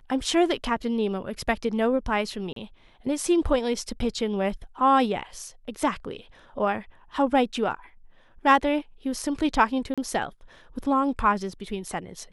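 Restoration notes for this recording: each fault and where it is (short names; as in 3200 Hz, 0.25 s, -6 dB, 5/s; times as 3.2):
2.53–2.56 gap 33 ms
9.94–9.98 gap 36 ms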